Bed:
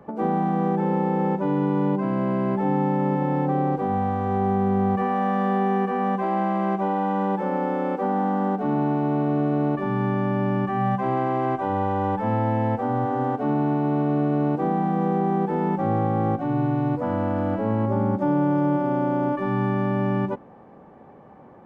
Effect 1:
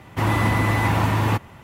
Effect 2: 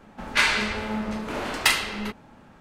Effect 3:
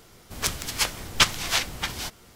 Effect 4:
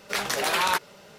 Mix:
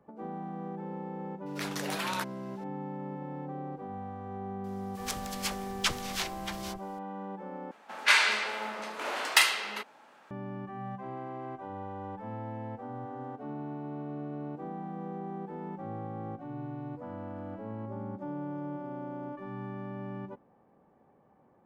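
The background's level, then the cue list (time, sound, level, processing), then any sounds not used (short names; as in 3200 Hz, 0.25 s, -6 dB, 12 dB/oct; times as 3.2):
bed -16.5 dB
1.46 add 4 -10.5 dB
4.64 add 3 -10 dB + dispersion lows, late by 54 ms, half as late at 610 Hz
7.71 replace with 2 -1.5 dB + HPF 580 Hz
not used: 1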